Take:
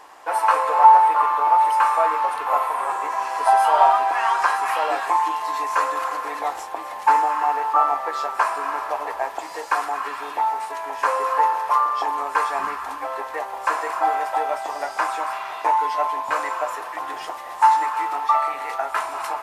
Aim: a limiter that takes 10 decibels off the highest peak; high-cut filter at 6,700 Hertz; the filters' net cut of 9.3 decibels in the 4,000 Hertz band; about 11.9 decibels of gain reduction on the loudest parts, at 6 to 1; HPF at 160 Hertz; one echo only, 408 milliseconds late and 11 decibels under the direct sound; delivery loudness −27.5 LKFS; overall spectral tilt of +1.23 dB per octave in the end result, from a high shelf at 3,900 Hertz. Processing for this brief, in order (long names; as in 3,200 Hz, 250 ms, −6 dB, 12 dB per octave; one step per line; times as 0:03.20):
high-pass filter 160 Hz
low-pass filter 6,700 Hz
high-shelf EQ 3,900 Hz −8 dB
parametric band 4,000 Hz −8 dB
downward compressor 6 to 1, threshold −20 dBFS
brickwall limiter −19.5 dBFS
single-tap delay 408 ms −11 dB
level +0.5 dB